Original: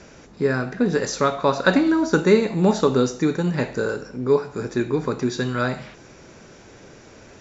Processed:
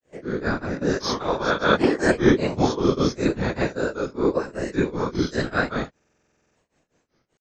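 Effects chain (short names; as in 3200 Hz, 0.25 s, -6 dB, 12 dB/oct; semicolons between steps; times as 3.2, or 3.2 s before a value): spectral swells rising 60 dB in 0.69 s; gate -33 dBFS, range -22 dB; whisperiser; grains 0.233 s, grains 5.1/s, pitch spread up and down by 3 st; stuck buffer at 5.95, samples 2048, times 12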